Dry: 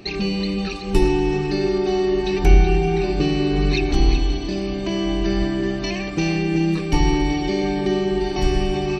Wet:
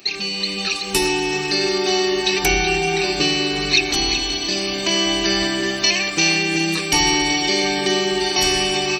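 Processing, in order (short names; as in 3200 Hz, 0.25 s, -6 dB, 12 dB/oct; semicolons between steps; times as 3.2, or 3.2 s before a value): tilt +4.5 dB/oct; AGC gain up to 9 dB; gain -2 dB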